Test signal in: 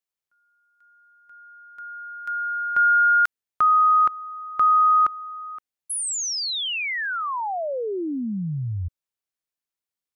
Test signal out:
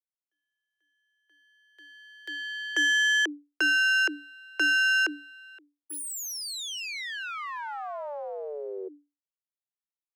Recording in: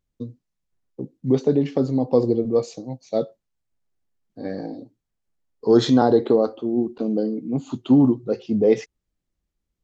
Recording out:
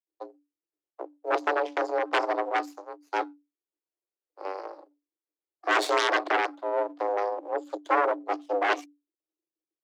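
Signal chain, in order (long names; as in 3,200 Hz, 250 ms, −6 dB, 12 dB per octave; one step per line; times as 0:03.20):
half-wave rectification
harmonic generator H 3 −10 dB, 6 −18 dB, 7 −25 dB, 8 −9 dB, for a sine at −4.5 dBFS
frequency shifter +290 Hz
level −4.5 dB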